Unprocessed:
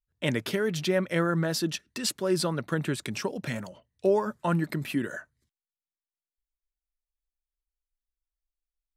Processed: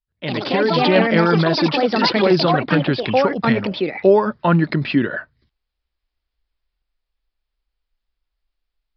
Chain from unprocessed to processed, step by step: echoes that change speed 0.105 s, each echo +5 st, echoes 3; downsampling 11025 Hz; AGC gain up to 13.5 dB

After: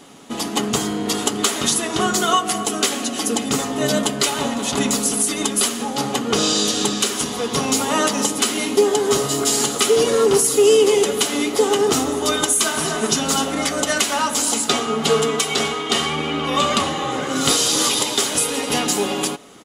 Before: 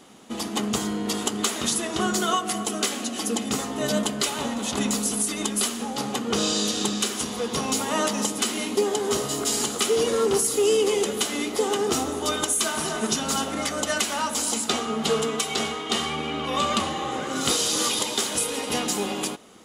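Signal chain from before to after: comb 7.1 ms, depth 35%; gain +5.5 dB

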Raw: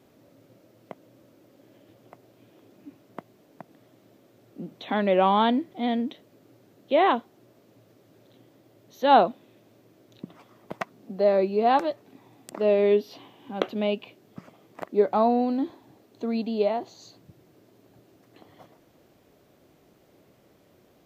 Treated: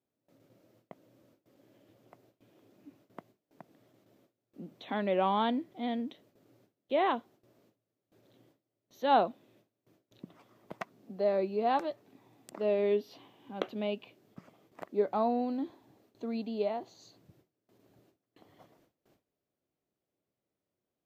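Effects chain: gate with hold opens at -47 dBFS; gain -8 dB

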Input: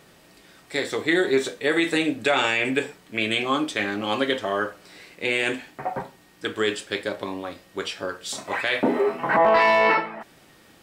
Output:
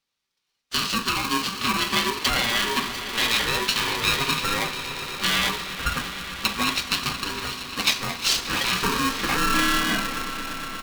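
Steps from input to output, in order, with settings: gate -42 dBFS, range -34 dB; tone controls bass -14 dB, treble +2 dB; treble ducked by the level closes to 2500 Hz, closed at -20 dBFS; limiter -16.5 dBFS, peak gain reduction 8 dB; band shelf 3900 Hz +11 dB 1.2 oct; comb 4.2 ms, depth 65%; swelling echo 0.116 s, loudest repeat 5, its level -16 dB; polarity switched at an audio rate 680 Hz

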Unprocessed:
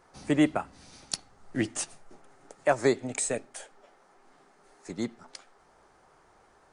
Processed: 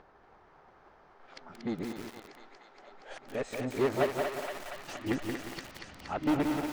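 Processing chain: whole clip reversed; soft clip -27.5 dBFS, distortion -6 dB; in parallel at -1.5 dB: level quantiser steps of 15 dB; on the sum: air absorption 240 m; on a send: thinning echo 0.235 s, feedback 82%, high-pass 570 Hz, level -5 dB; on the sum: lo-fi delay 0.178 s, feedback 55%, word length 7-bit, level -3.5 dB

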